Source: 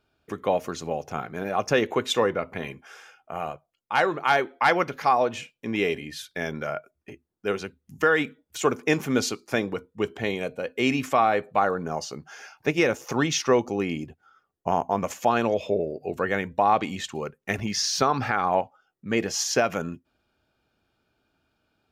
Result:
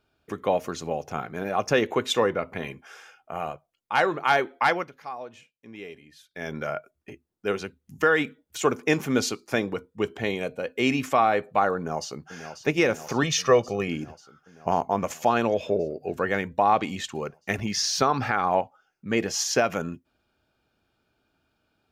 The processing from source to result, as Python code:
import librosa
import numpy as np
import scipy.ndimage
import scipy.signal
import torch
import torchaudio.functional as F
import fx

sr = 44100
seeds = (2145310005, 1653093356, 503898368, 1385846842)

y = fx.echo_throw(x, sr, start_s=11.76, length_s=0.79, ms=540, feedback_pct=75, wet_db=-10.5)
y = fx.comb(y, sr, ms=1.7, depth=0.66, at=(13.23, 13.88))
y = fx.edit(y, sr, fx.fade_down_up(start_s=4.62, length_s=1.95, db=-15.5, fade_s=0.29), tone=tone)